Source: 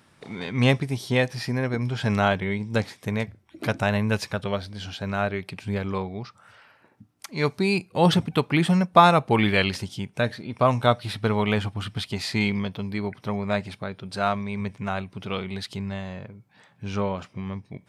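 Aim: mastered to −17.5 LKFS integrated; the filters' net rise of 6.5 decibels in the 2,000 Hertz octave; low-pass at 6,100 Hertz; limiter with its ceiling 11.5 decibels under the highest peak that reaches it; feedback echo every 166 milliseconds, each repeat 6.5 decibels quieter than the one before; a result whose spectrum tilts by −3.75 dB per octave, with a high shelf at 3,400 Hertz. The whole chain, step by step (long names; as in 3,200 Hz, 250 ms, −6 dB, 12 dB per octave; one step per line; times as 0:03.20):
low-pass filter 6,100 Hz
parametric band 2,000 Hz +5.5 dB
high-shelf EQ 3,400 Hz +8.5 dB
brickwall limiter −11 dBFS
repeating echo 166 ms, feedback 47%, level −6.5 dB
level +7 dB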